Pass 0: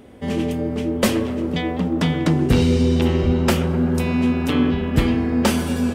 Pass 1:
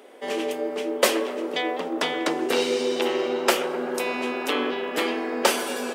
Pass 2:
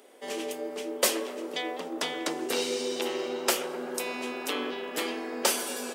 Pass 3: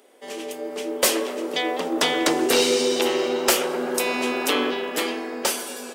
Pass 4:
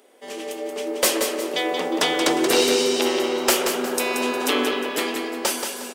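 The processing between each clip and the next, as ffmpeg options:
-af "highpass=f=390:w=0.5412,highpass=f=390:w=1.3066,volume=1.5dB"
-af "bass=f=250:g=1,treble=f=4k:g=9,volume=-7.5dB"
-af "dynaudnorm=f=130:g=11:m=13.5dB,asoftclip=type=tanh:threshold=-10dB"
-af "aecho=1:1:179|358|537|716:0.473|0.156|0.0515|0.017"

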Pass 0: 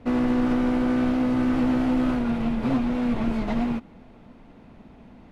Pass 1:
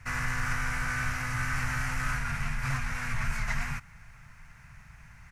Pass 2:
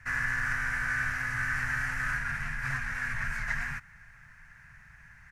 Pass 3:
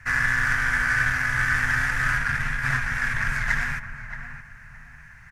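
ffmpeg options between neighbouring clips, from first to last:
-filter_complex "[0:a]firequalizer=gain_entry='entry(140,0);entry(220,-25);entry(320,-30);entry(980,-5);entry(1600,8);entry(2300,5);entry(3400,-8);entry(5800,12)':delay=0.05:min_phase=1,asplit=2[a][b];[b]asoftclip=type=tanh:threshold=-35dB,volume=-11dB[c];[a][c]amix=inputs=2:normalize=0"
-af "equalizer=f=1.7k:w=3.4:g=14,volume=-6dB"
-filter_complex "[0:a]asplit=2[a][b];[b]adelay=623,lowpass=f=1.6k:p=1,volume=-8dB,asplit=2[c][d];[d]adelay=623,lowpass=f=1.6k:p=1,volume=0.3,asplit=2[e][f];[f]adelay=623,lowpass=f=1.6k:p=1,volume=0.3,asplit=2[g][h];[h]adelay=623,lowpass=f=1.6k:p=1,volume=0.3[i];[a][c][e][g][i]amix=inputs=5:normalize=0,aeval=exprs='0.133*(cos(1*acos(clip(val(0)/0.133,-1,1)))-cos(1*PI/2))+0.00335*(cos(5*acos(clip(val(0)/0.133,-1,1)))-cos(5*PI/2))+0.00668*(cos(7*acos(clip(val(0)/0.133,-1,1)))-cos(7*PI/2))':c=same,volume=8dB"

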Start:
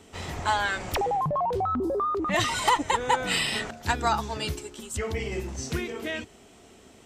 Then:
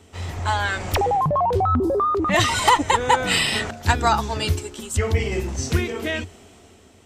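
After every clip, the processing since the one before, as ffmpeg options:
-af "equalizer=f=88:w=5.4:g=12,dynaudnorm=f=130:g=11:m=6.5dB"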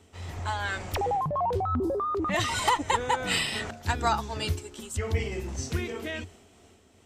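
-af "tremolo=f=2.7:d=0.28,volume=-6.5dB"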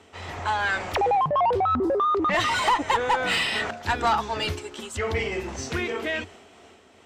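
-filter_complex "[0:a]asplit=2[a][b];[b]highpass=f=720:p=1,volume=17dB,asoftclip=type=tanh:threshold=-13dB[c];[a][c]amix=inputs=2:normalize=0,lowpass=f=7.1k:p=1,volume=-6dB,highshelf=f=4.6k:g=-11.5"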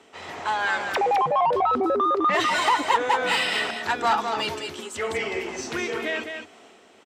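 -af "highpass=200,aecho=1:1:207:0.473"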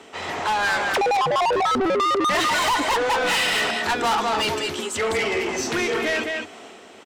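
-af "asoftclip=type=tanh:threshold=-27dB,volume=8.5dB"

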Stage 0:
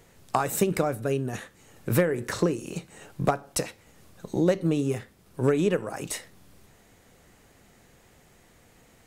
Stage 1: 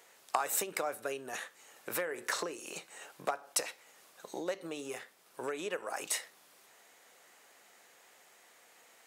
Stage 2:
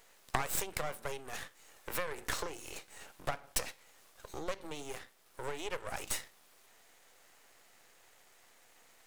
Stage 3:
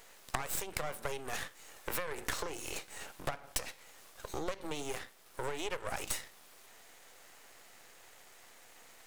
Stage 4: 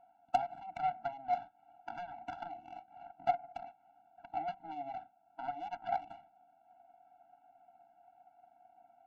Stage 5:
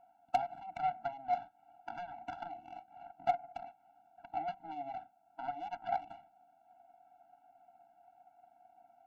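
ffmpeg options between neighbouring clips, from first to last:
-af "acompressor=threshold=-26dB:ratio=3,highpass=660"
-af "aeval=exprs='max(val(0),0)':c=same,volume=2dB"
-af "acompressor=threshold=-37dB:ratio=5,volume=5.5dB"
-filter_complex "[0:a]asplit=3[a][b][c];[a]bandpass=f=730:t=q:w=8,volume=0dB[d];[b]bandpass=f=1.09k:t=q:w=8,volume=-6dB[e];[c]bandpass=f=2.44k:t=q:w=8,volume=-9dB[f];[d][e][f]amix=inputs=3:normalize=0,adynamicsmooth=sensitivity=7.5:basefreq=670,afftfilt=real='re*eq(mod(floor(b*sr/1024/330),2),0)':imag='im*eq(mod(floor(b*sr/1024/330),2),0)':win_size=1024:overlap=0.75,volume=16dB"
-af "asoftclip=type=hard:threshold=-20.5dB"

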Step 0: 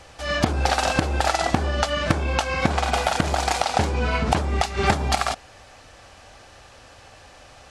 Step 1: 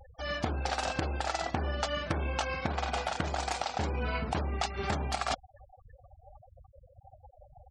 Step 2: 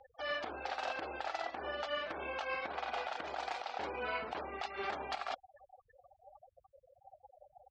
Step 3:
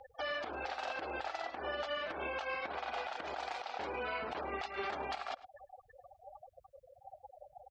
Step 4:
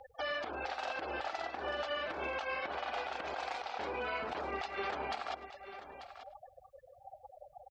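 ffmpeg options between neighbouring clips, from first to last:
-af "afftfilt=real='re*gte(hypot(re,im),0.02)':imag='im*gte(hypot(re,im),0.02)':win_size=1024:overlap=0.75,areverse,acompressor=threshold=-28dB:ratio=16,areverse"
-filter_complex "[0:a]acrossover=split=340 4500:gain=0.0631 1 0.0708[a][b][c];[a][b][c]amix=inputs=3:normalize=0,alimiter=level_in=2dB:limit=-24dB:level=0:latency=1:release=108,volume=-2dB,volume=-1dB"
-filter_complex "[0:a]asplit=2[a][b];[b]adelay=105,volume=-21dB,highshelf=f=4k:g=-2.36[c];[a][c]amix=inputs=2:normalize=0,alimiter=level_in=10.5dB:limit=-24dB:level=0:latency=1:release=212,volume=-10.5dB,volume=5.5dB"
-af "aecho=1:1:890:0.251,volume=1dB"

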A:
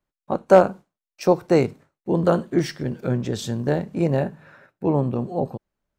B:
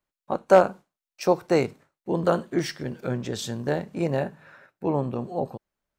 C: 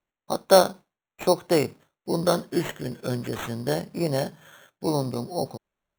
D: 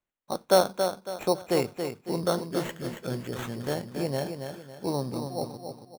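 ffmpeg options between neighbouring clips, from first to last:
-af "lowshelf=f=460:g=-7"
-af "acrusher=samples=9:mix=1:aa=0.000001"
-af "aecho=1:1:277|554|831|1108:0.447|0.161|0.0579|0.0208,volume=-4.5dB"

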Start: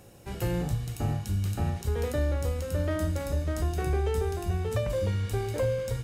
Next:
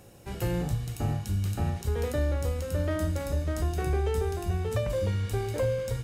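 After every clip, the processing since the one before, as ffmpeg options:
-af anull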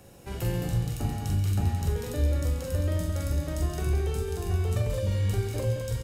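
-filter_complex "[0:a]acrossover=split=280|3000[a][b][c];[b]acompressor=threshold=-38dB:ratio=6[d];[a][d][c]amix=inputs=3:normalize=0,aecho=1:1:43.73|134.1|215.7:0.631|0.282|0.501"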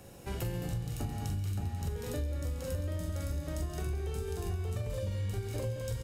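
-af "acompressor=threshold=-32dB:ratio=6"

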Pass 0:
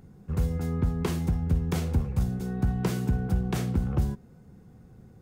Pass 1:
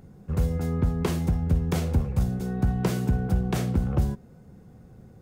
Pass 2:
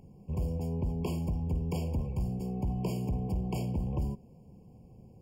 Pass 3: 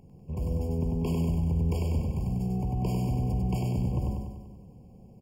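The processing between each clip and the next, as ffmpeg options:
-af "equalizer=f=590:w=3:g=4.5,volume=2dB"
-af "asoftclip=type=tanh:threshold=-21dB,afftfilt=real='re*eq(mod(floor(b*sr/1024/1100),2),0)':imag='im*eq(mod(floor(b*sr/1024/1100),2),0)':win_size=1024:overlap=0.75,volume=-4.5dB"
-af "aecho=1:1:97|194|291|388|485|582|679|776|873:0.708|0.418|0.246|0.145|0.0858|0.0506|0.0299|0.0176|0.0104"

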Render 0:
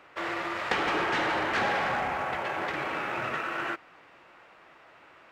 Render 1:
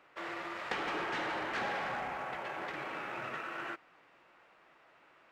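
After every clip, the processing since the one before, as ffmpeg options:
-af "equalizer=f=85:t=o:w=0.35:g=-11.5,volume=-8.5dB"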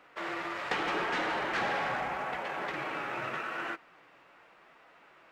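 -af "flanger=delay=4:depth=3.1:regen=-54:speed=0.82:shape=sinusoidal,volume=8.5dB"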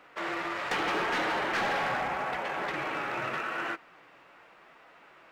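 -af "asoftclip=type=hard:threshold=-28.5dB,volume=3dB"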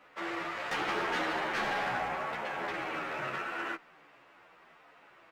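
-filter_complex "[0:a]asplit=2[a][b];[b]adelay=11.3,afreqshift=-1.2[c];[a][c]amix=inputs=2:normalize=1"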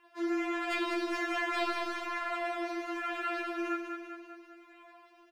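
-af "aecho=1:1:196|392|588|784|980|1176|1372:0.473|0.27|0.154|0.0876|0.0499|0.0285|0.0162,afftfilt=real='re*4*eq(mod(b,16),0)':imag='im*4*eq(mod(b,16),0)':win_size=2048:overlap=0.75,volume=1.5dB"

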